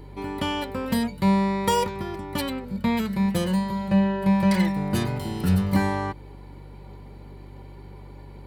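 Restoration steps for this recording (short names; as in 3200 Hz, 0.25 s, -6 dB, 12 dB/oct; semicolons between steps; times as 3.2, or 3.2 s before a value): de-hum 48.5 Hz, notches 3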